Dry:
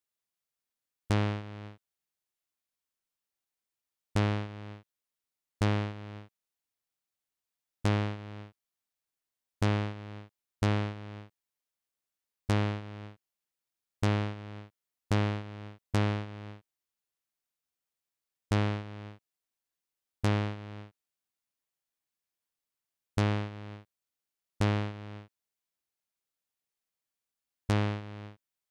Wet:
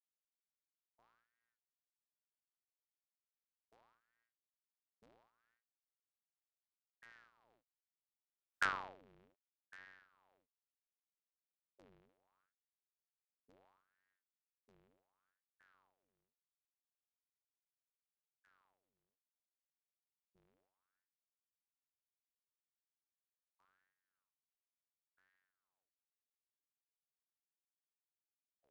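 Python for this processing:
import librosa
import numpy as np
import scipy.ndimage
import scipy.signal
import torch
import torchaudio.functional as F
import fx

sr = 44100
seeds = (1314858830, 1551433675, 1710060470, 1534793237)

y = fx.tape_stop_end(x, sr, length_s=1.3)
y = fx.doppler_pass(y, sr, speed_mps=36, closest_m=1.8, pass_at_s=8.59)
y = fx.ring_lfo(y, sr, carrier_hz=1000.0, swing_pct=75, hz=0.71)
y = y * librosa.db_to_amplitude(-1.5)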